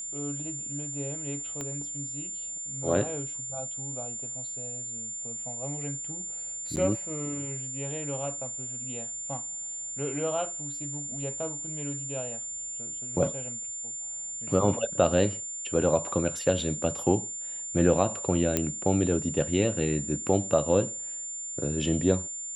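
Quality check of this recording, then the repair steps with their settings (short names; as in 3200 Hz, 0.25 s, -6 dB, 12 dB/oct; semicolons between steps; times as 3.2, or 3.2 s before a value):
tone 7200 Hz -34 dBFS
1.61 pop -21 dBFS
6.76–6.77 gap 9.6 ms
18.57 pop -8 dBFS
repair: de-click; notch 7200 Hz, Q 30; interpolate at 6.76, 9.6 ms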